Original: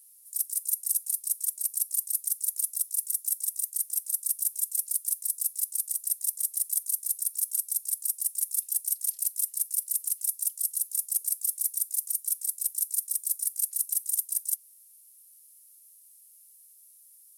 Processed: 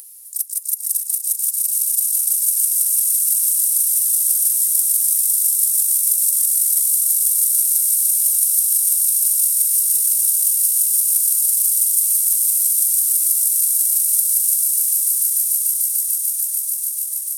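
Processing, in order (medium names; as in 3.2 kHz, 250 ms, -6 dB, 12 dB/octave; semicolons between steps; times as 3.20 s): echo with a slow build-up 147 ms, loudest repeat 8, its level -5 dB; upward compressor, threshold -38 dBFS; trim +6.5 dB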